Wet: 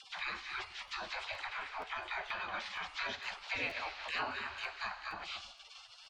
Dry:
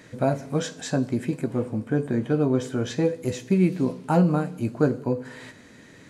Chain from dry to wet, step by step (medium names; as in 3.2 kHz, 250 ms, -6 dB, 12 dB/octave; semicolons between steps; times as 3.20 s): delay 224 ms -13 dB; in parallel at +2 dB: compression 6:1, threshold -30 dBFS, peak gain reduction 14.5 dB; on the sum: spectral gate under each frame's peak -30 dB weak; phase dispersion lows, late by 45 ms, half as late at 690 Hz; on a send at -14 dB: high-pass 250 Hz + reverberation RT60 0.85 s, pre-delay 20 ms; on the sum: upward compressor, threshold -39 dBFS; low-pass 4.2 kHz 24 dB/octave; bass shelf 400 Hz -6 dB; crackling interface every 0.47 s, samples 512, repeat, from 0.87 s; trim +5 dB